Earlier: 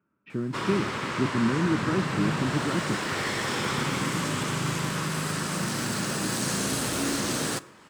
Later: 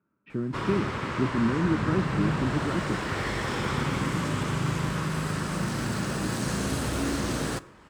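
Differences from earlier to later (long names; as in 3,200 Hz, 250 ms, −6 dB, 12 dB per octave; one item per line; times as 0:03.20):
background: remove high-pass filter 130 Hz 12 dB per octave
master: add high-shelf EQ 2,900 Hz −8 dB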